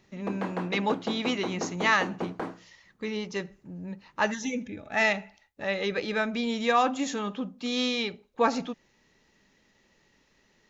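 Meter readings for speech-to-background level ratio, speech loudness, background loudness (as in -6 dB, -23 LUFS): 7.5 dB, -29.0 LUFS, -36.5 LUFS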